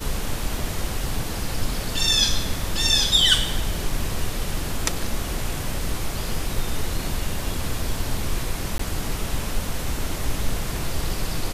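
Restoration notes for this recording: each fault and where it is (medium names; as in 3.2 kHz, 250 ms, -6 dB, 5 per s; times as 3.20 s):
8.78–8.79 s: dropout 14 ms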